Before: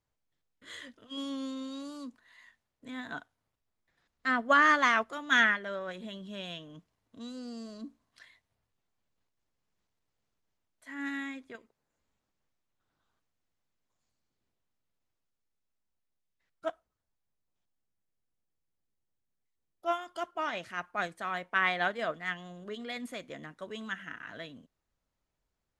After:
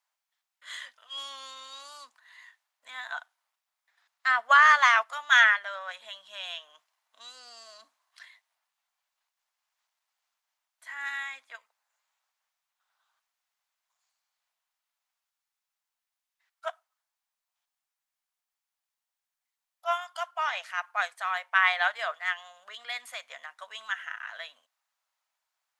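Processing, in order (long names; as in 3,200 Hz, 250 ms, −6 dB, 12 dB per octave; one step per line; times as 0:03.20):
inverse Chebyshev high-pass filter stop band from 380 Hz, stop band 40 dB
level +5.5 dB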